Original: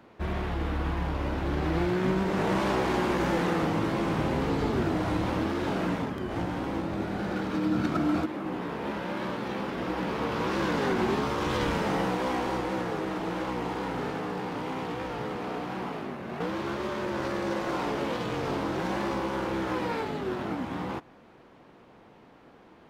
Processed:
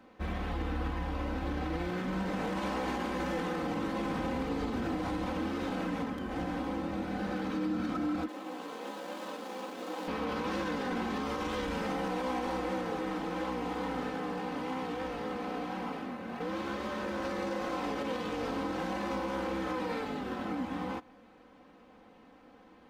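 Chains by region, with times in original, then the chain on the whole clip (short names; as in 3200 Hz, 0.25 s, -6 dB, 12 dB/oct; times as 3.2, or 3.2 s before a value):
8.28–10.08 median filter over 25 samples + HPF 320 Hz + tilt +1.5 dB/oct
whole clip: comb 3.9 ms, depth 72%; limiter -20.5 dBFS; gain -5 dB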